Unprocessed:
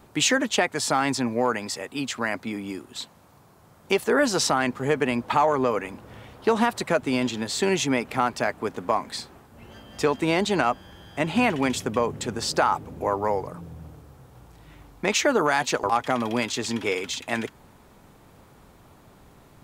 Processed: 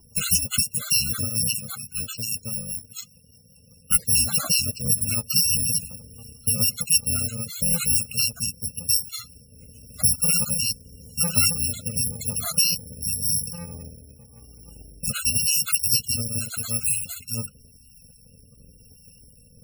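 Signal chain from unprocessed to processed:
samples in bit-reversed order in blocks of 128 samples
rotating-speaker cabinet horn 5 Hz, later 0.9 Hz, at 0:05.74
spectral peaks only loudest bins 64
level +5.5 dB

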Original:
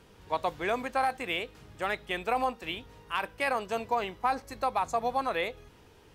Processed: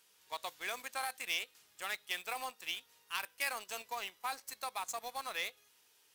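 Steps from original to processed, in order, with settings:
stylus tracing distortion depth 0.025 ms
first difference
in parallel at −3.5 dB: bit reduction 8 bits
on the sum: level +1 dB

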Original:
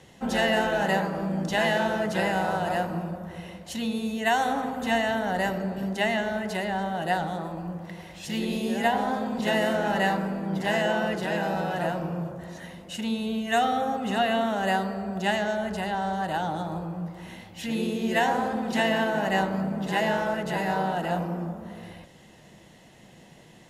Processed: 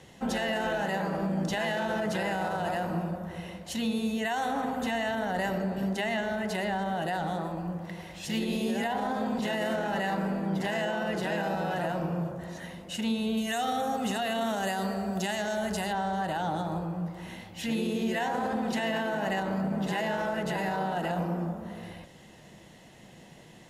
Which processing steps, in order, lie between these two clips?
0:13.37–0:15.93: bass and treble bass 0 dB, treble +10 dB
brickwall limiter −21.5 dBFS, peak gain reduction 11 dB

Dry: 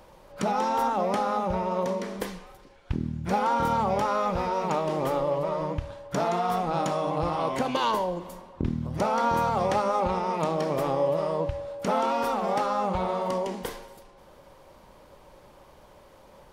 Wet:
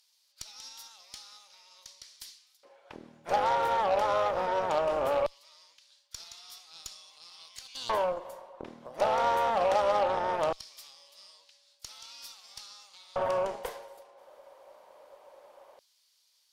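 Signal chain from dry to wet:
auto-filter high-pass square 0.19 Hz 590–4,600 Hz
harmonic generator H 6 −26 dB, 8 −19 dB, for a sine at −8.5 dBFS
level −6 dB

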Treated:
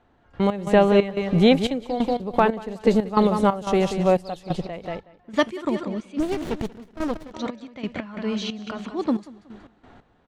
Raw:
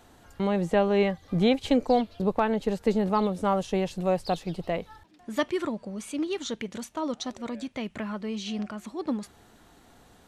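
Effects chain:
repeating echo 185 ms, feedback 35%, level −9 dB
low-pass that shuts in the quiet parts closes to 2,300 Hz, open at −22.5 dBFS
gate pattern "..x.xx.xxx..x.x" 90 BPM −12 dB
0:06.20–0:07.32: windowed peak hold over 33 samples
level +6.5 dB

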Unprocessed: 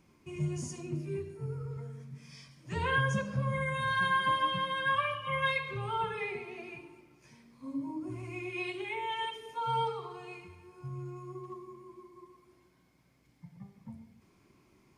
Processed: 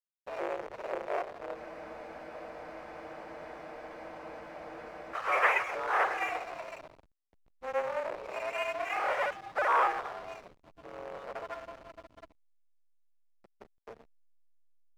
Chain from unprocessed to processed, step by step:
sub-harmonics by changed cycles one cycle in 2, inverted
high-frequency loss of the air 91 metres
single-sideband voice off tune +120 Hz 330–2,400 Hz
slack as between gear wheels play −46.5 dBFS
frozen spectrum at 0:01.59, 3.55 s
level +6.5 dB

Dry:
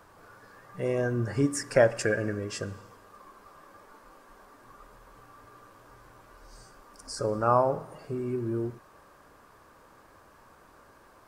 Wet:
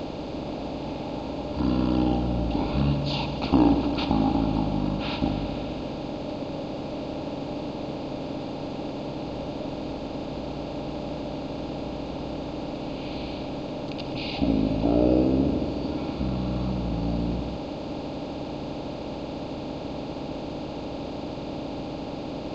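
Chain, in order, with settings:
compressor on every frequency bin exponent 0.4
wrong playback speed 15 ips tape played at 7.5 ips
level −2.5 dB

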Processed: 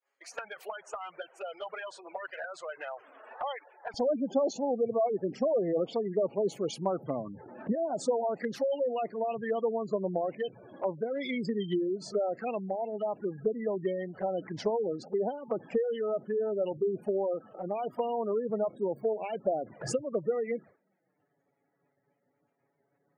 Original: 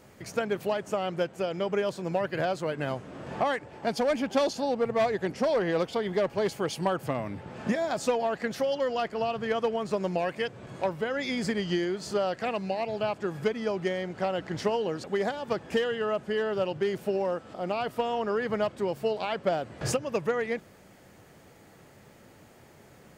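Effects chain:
downward expander −42 dBFS
high-pass filter 780 Hz 12 dB per octave, from 0:03.94 180 Hz
gate on every frequency bin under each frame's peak −15 dB strong
flanger swept by the level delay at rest 7.3 ms, full sweep at −27 dBFS

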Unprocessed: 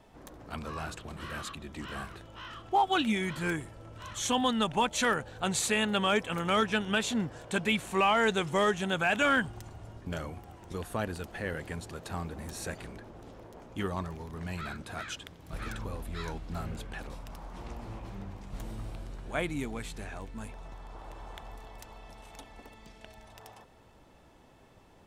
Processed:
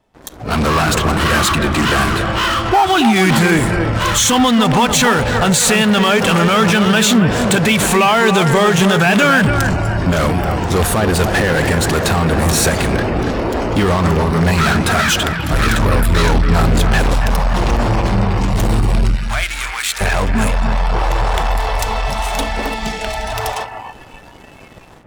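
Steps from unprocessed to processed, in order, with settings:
automatic gain control gain up to 9.5 dB
in parallel at −9.5 dB: fuzz pedal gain 40 dB, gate −49 dBFS
on the sum: brickwall limiter −13 dBFS, peak gain reduction 6 dB
0:19.16–0:20.01: high-pass filter 1,100 Hz 12 dB per octave
on a send: bucket-brigade delay 279 ms, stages 4,096, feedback 42%, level −7 dB
on the sum: noise reduction from a noise print of the clip's start 11 dB
level +6.5 dB

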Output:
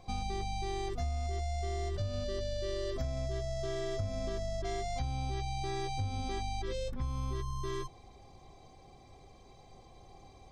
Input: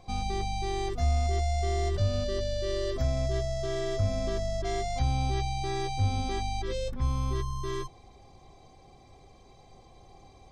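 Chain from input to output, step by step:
downward compressor, threshold −30 dBFS, peak gain reduction 8.5 dB
level −1.5 dB

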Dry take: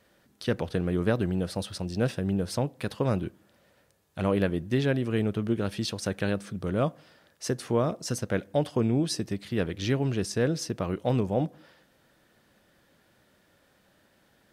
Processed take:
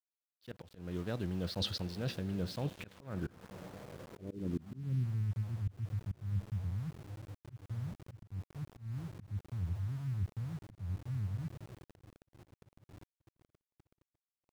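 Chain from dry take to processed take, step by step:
low-shelf EQ 160 Hz +6 dB
reversed playback
downward compressor 16 to 1, threshold −37 dBFS, peak gain reduction 20.5 dB
reversed playback
feedback delay with all-pass diffusion 1,341 ms, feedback 59%, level −13.5 dB
low-pass filter sweep 4,400 Hz → 100 Hz, 0:02.45–0:05.28
centre clipping without the shift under −51 dBFS
volume swells 216 ms
level +3.5 dB

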